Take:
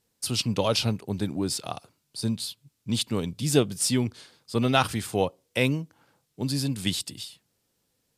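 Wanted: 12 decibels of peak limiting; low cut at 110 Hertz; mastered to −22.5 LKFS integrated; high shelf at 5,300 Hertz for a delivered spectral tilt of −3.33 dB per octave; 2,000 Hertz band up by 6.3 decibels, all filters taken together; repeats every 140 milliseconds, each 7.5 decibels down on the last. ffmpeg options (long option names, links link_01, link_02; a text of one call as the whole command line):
ffmpeg -i in.wav -af "highpass=110,equalizer=frequency=2000:width_type=o:gain=7,highshelf=frequency=5300:gain=8,alimiter=limit=-14dB:level=0:latency=1,aecho=1:1:140|280|420|560|700:0.422|0.177|0.0744|0.0312|0.0131,volume=4.5dB" out.wav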